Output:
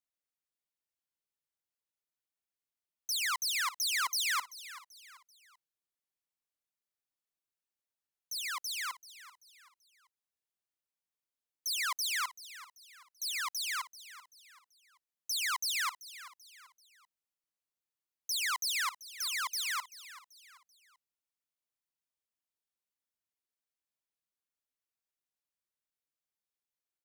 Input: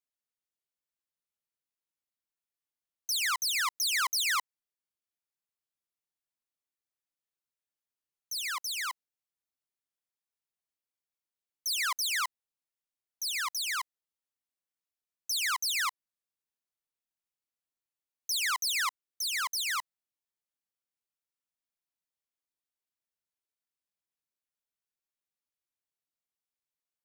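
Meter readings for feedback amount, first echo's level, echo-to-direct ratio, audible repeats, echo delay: 39%, -16.0 dB, -15.5 dB, 3, 386 ms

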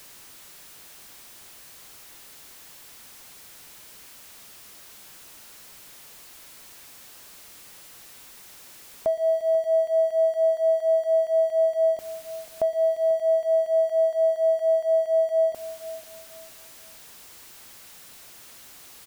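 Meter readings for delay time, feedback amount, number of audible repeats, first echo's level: 490 ms, 29%, 2, -16.0 dB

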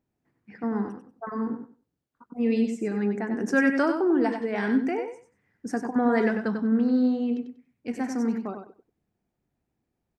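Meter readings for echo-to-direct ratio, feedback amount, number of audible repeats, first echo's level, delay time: -7.0 dB, 19%, 2, -7.0 dB, 95 ms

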